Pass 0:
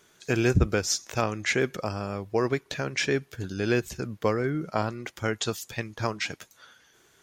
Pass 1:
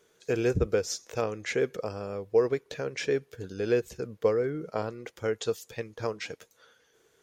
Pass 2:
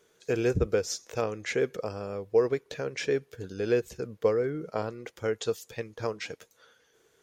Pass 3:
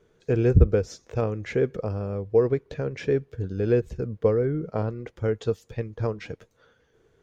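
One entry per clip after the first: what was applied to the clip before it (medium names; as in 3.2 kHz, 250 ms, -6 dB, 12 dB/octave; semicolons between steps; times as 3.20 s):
peaking EQ 470 Hz +13.5 dB 0.46 oct; trim -7.5 dB
no audible change
RIAA curve playback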